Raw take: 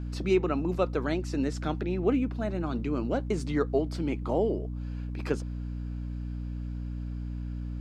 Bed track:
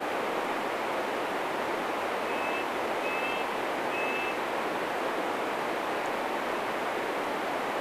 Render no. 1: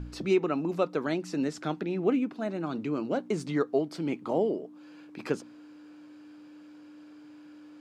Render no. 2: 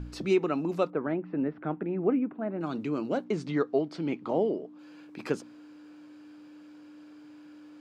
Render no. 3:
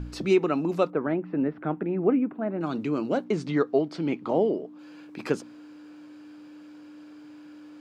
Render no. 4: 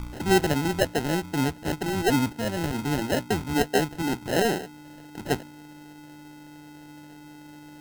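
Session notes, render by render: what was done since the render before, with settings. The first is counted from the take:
de-hum 60 Hz, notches 4
0.90–2.61 s: Bessel low-pass 1.5 kHz, order 6; 3.24–4.79 s: low-pass 5 kHz
trim +3.5 dB
octave divider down 1 oct, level -5 dB; sample-and-hold 38×

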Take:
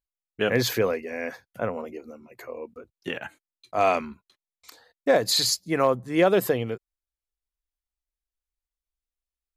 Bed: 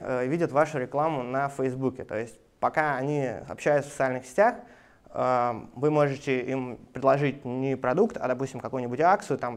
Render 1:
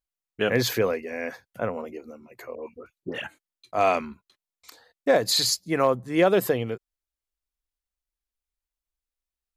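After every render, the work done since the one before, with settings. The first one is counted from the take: 2.55–3.24 s: phase dispersion highs, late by 106 ms, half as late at 1.5 kHz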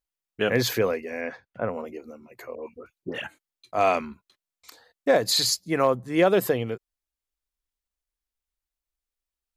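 1.20–1.67 s: low-pass 4.6 kHz -> 2 kHz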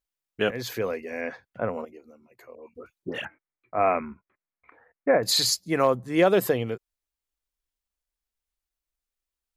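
0.51–1.21 s: fade in, from -14 dB; 1.85–2.75 s: gain -9 dB; 3.25–5.23 s: Chebyshev low-pass 2.3 kHz, order 5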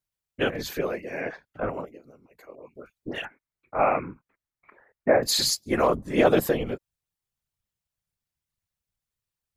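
whisper effect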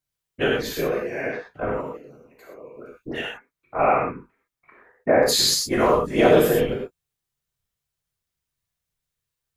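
gated-style reverb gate 140 ms flat, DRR -2 dB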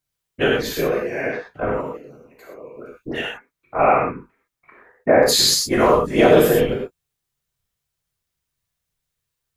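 trim +3.5 dB; peak limiter -2 dBFS, peak gain reduction 2 dB

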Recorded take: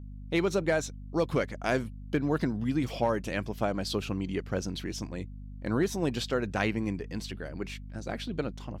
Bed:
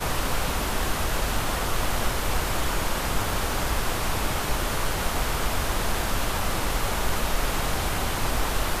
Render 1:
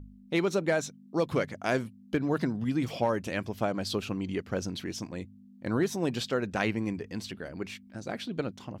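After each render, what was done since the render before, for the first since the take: de-hum 50 Hz, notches 3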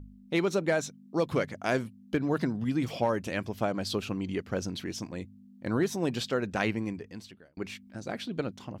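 6.70–7.57 s: fade out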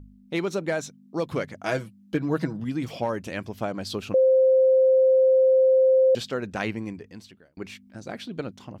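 1.63–2.60 s: comb 6.2 ms; 4.14–6.15 s: bleep 523 Hz -14.5 dBFS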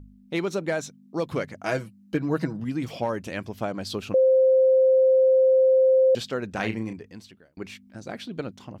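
1.40–2.82 s: band-stop 3.4 kHz, Q 11; 6.53–6.93 s: doubling 36 ms -8 dB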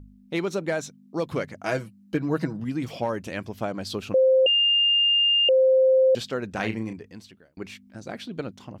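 4.46–5.49 s: bleep 2.81 kHz -17 dBFS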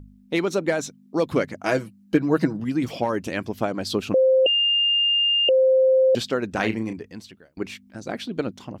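harmonic-percussive split percussive +5 dB; dynamic bell 290 Hz, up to +4 dB, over -38 dBFS, Q 1.4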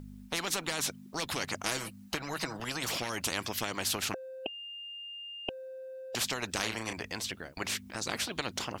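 compression 4:1, threshold -21 dBFS, peak gain reduction 7.5 dB; spectrum-flattening compressor 4:1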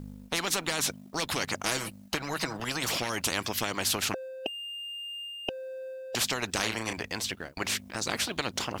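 waveshaping leveller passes 1; reverse; upward compressor, threshold -35 dBFS; reverse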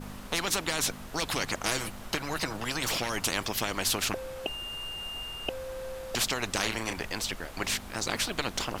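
add bed -19 dB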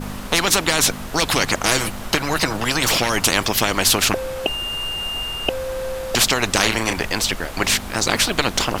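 trim +12 dB; peak limiter -1 dBFS, peak gain reduction 2 dB

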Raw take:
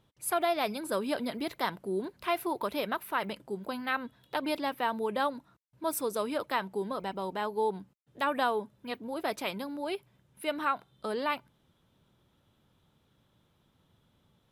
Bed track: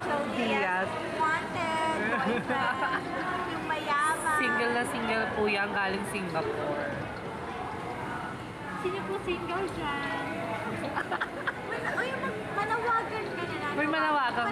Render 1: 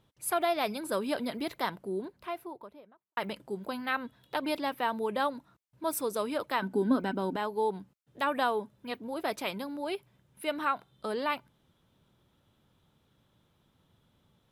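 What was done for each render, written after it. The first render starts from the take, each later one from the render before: 1.45–3.17 s: studio fade out; 6.62–7.36 s: small resonant body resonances 260/1500 Hz, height 18 dB, ringing for 55 ms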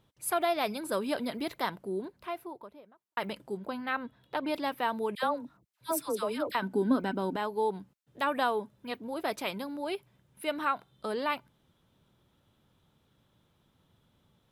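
3.57–4.54 s: treble shelf 3.8 kHz -9 dB; 5.15–6.55 s: phase dispersion lows, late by 81 ms, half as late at 1 kHz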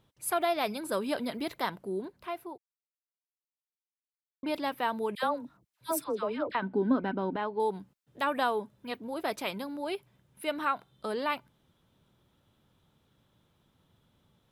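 2.58–4.43 s: mute; 6.04–7.60 s: low-pass 2.8 kHz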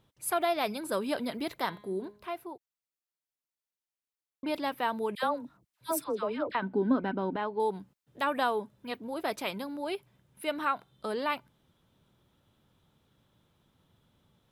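1.57–2.31 s: de-hum 207 Hz, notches 21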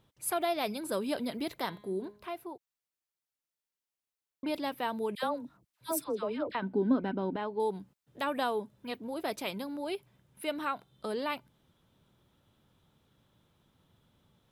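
dynamic bell 1.3 kHz, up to -5 dB, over -43 dBFS, Q 0.73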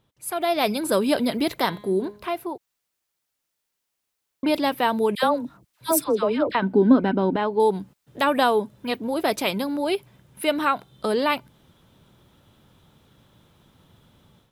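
level rider gain up to 12 dB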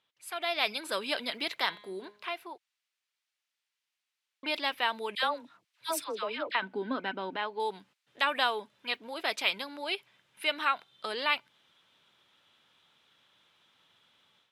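band-pass filter 2.7 kHz, Q 1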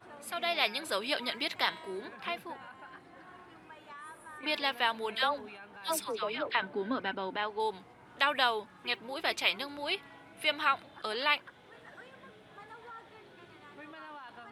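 add bed track -21 dB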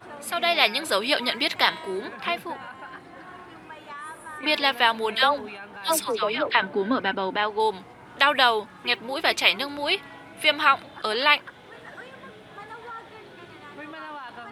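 trim +9.5 dB; peak limiter -3 dBFS, peak gain reduction 1.5 dB

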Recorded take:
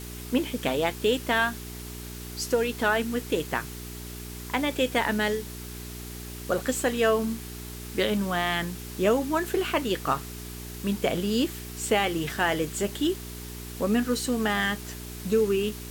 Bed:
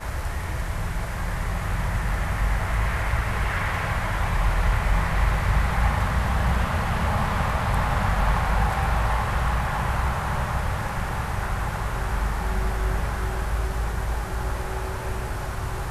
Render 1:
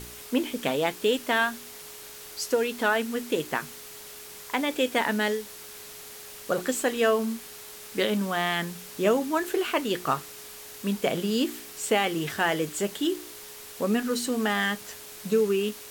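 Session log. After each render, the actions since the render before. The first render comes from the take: de-hum 60 Hz, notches 6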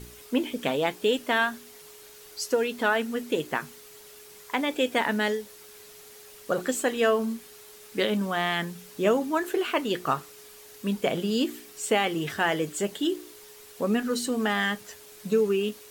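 noise reduction 7 dB, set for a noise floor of -44 dBFS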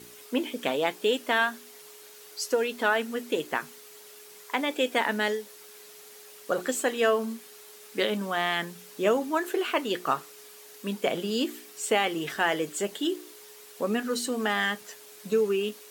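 Bessel high-pass 260 Hz, order 2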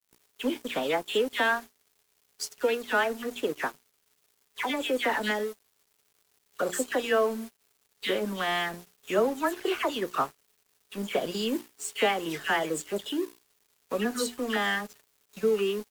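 phase dispersion lows, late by 114 ms, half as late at 2.3 kHz; crossover distortion -42.5 dBFS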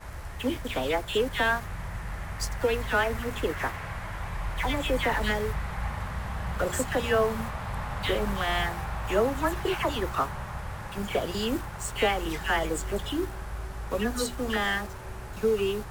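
add bed -10.5 dB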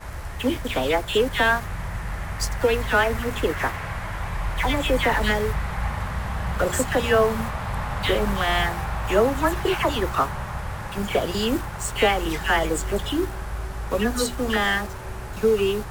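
trim +5.5 dB

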